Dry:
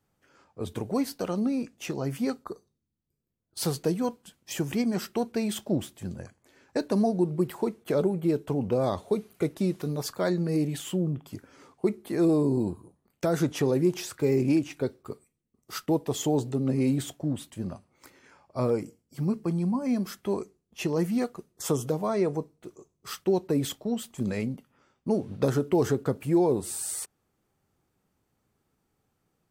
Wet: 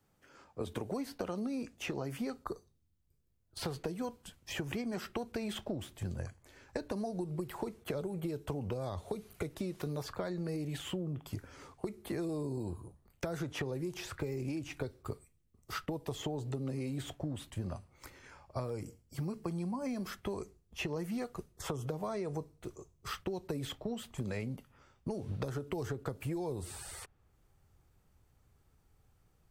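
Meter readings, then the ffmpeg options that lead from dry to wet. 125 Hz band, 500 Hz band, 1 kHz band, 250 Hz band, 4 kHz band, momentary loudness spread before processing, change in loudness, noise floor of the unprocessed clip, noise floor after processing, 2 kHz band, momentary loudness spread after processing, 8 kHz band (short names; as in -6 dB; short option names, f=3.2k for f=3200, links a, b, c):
-8.5 dB, -11.5 dB, -8.5 dB, -12.0 dB, -6.0 dB, 14 LU, -11.5 dB, -77 dBFS, -72 dBFS, -4.0 dB, 8 LU, -11.5 dB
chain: -filter_complex "[0:a]acrossover=split=220|3400[a][b][c];[a]acompressor=threshold=-41dB:ratio=4[d];[b]acompressor=threshold=-31dB:ratio=4[e];[c]acompressor=threshold=-53dB:ratio=4[f];[d][e][f]amix=inputs=3:normalize=0,asubboost=boost=6.5:cutoff=84,acompressor=threshold=-35dB:ratio=6,volume=1.5dB"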